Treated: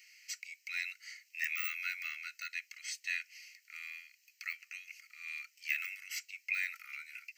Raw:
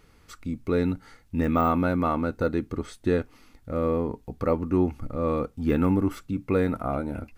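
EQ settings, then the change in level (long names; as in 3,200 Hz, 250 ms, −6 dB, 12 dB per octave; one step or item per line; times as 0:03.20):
Butterworth high-pass 1,600 Hz 96 dB per octave
phaser with its sweep stopped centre 2,400 Hz, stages 8
+9.5 dB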